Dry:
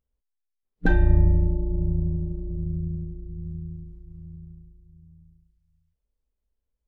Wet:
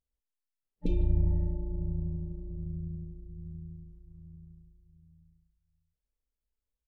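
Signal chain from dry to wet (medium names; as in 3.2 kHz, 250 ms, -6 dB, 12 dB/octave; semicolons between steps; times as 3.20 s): spectral replace 0.85–1.39 s, 570–2100 Hz after; speakerphone echo 150 ms, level -12 dB; trim -8.5 dB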